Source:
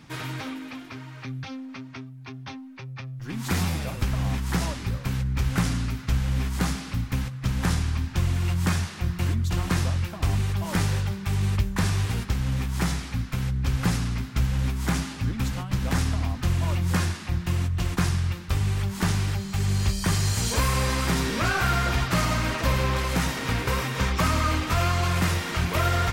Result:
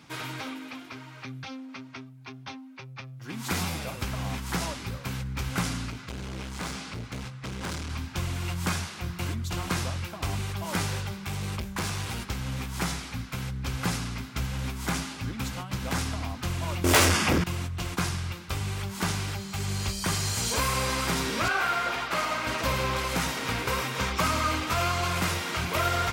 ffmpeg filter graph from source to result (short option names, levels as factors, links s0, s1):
-filter_complex "[0:a]asettb=1/sr,asplit=3[s0][s1][s2];[s0]atrim=end=5.904[s3];[s1]atrim=start=5.9:end=7.9,asetpts=PTS-STARTPTS,afade=t=in:d=0.004:c=qsin,afade=t=out:st=1.996:d=0.004:c=qsin,lowpass=8800,volume=22.4,asoftclip=hard,volume=0.0447,asplit=2[s4][s5];[s5]adelay=25,volume=0.237[s6];[s4][s6]amix=inputs=2:normalize=0,atrim=end_sample=88200[s7];[s2]atrim=start=7.896[s8];[s3][s7]acrossfade=d=0.004:c1=hsin:c2=qsin[s9];[s9][s8]acrossfade=d=0.004:c1=qsin:c2=hsin,asettb=1/sr,asplit=3[s10][s11][s12];[s10]atrim=end=11.124[s13];[s11]atrim=start=11.12:end=12.23,asetpts=PTS-STARTPTS,afade=t=in:d=0.004:c=qsin,afade=t=out:st=1.106:d=0.004:c=qsin,asplit=2[s14][s15];[s15]adelay=14,volume=0.376[s16];[s14][s16]amix=inputs=2:normalize=0,atrim=end_sample=48951,volume=12.6,asoftclip=hard,volume=0.0794[s17];[s12]atrim=start=12.226[s18];[s13][s17]acrossfade=d=0.004:c1=hsin:c2=qsin[s19];[s19][s18]acrossfade=d=0.004:c1=qsin:c2=hsin,asettb=1/sr,asplit=3[s20][s21][s22];[s20]atrim=end=16.844[s23];[s21]atrim=start=16.84:end=17.44,asetpts=PTS-STARTPTS,afade=t=in:d=0.004:c=qsin,afade=t=out:st=0.596:d=0.004:c=qsin,bandreject=f=4000:w=5.2,aeval=exprs='0.224*sin(PI/2*3.98*val(0)/0.224)':c=same[s24];[s22]atrim=start=17.436[s25];[s23][s24]acrossfade=d=0.004:c1=hsin:c2=qsin[s26];[s26][s25]acrossfade=d=0.004:c1=qsin:c2=hsin,asettb=1/sr,asplit=3[s27][s28][s29];[s27]atrim=end=21.484[s30];[s28]atrim=start=21.48:end=22.47,asetpts=PTS-STARTPTS,afade=t=in:d=0.004:c=qsin,afade=t=out:st=0.986:d=0.004:c=qsin,highpass=110,bass=f=250:g=-13,treble=f=4000:g=-7,aeval=exprs='val(0)+0.00708*(sin(2*PI*60*n/s)+sin(2*PI*2*60*n/s)/2+sin(2*PI*3*60*n/s)/3+sin(2*PI*4*60*n/s)/4+sin(2*PI*5*60*n/s)/5)':c=same[s31];[s29]atrim=start=22.466[s32];[s30][s31]acrossfade=d=0.004:c1=hsin:c2=qsin[s33];[s33][s32]acrossfade=d=0.004:c1=qsin:c2=hsin,highpass=61,equalizer=f=100:t=o:w=3:g=-7,bandreject=f=1800:w=15"